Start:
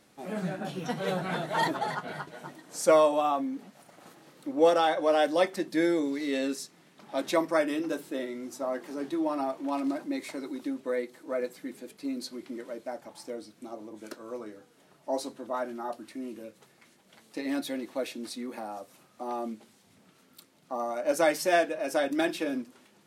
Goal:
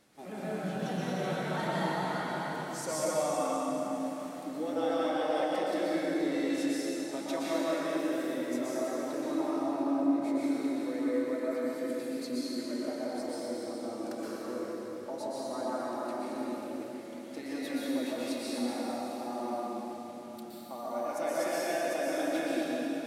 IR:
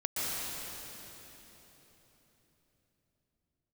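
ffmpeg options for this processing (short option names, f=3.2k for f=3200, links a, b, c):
-filter_complex "[0:a]asettb=1/sr,asplit=3[a][b][c];[a]atrim=end=9.554[d];[b]atrim=start=9.55:end=10.22,asetpts=PTS-STARTPTS,afade=t=in:d=0.004:c=qsin,afade=t=out:st=0.666:d=0.004:c=qsin,tiltshelf=f=1.3k:g=8.5[e];[c]atrim=start=10.216[f];[d][e]acrossfade=d=0.004:c1=hsin:c2=qsin[g];[g][f]acrossfade=d=0.004:c1=qsin:c2=hsin,acompressor=threshold=-37dB:ratio=2.5[h];[1:a]atrim=start_sample=2205[i];[h][i]afir=irnorm=-1:irlink=0,volume=-3dB"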